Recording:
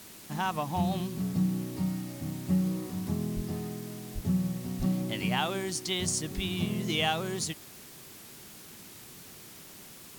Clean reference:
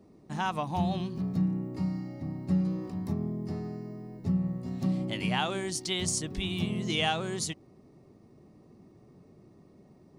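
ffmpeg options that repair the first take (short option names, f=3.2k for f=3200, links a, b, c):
-filter_complex "[0:a]asplit=3[a][b][c];[a]afade=t=out:st=3.35:d=0.02[d];[b]highpass=f=140:w=0.5412,highpass=f=140:w=1.3066,afade=t=in:st=3.35:d=0.02,afade=t=out:st=3.47:d=0.02[e];[c]afade=t=in:st=3.47:d=0.02[f];[d][e][f]amix=inputs=3:normalize=0,asplit=3[g][h][i];[g]afade=t=out:st=4.14:d=0.02[j];[h]highpass=f=140:w=0.5412,highpass=f=140:w=1.3066,afade=t=in:st=4.14:d=0.02,afade=t=out:st=4.26:d=0.02[k];[i]afade=t=in:st=4.26:d=0.02[l];[j][k][l]amix=inputs=3:normalize=0,asplit=3[m][n][o];[m]afade=t=out:st=4.78:d=0.02[p];[n]highpass=f=140:w=0.5412,highpass=f=140:w=1.3066,afade=t=in:st=4.78:d=0.02,afade=t=out:st=4.9:d=0.02[q];[o]afade=t=in:st=4.9:d=0.02[r];[p][q][r]amix=inputs=3:normalize=0,afwtdn=0.0035"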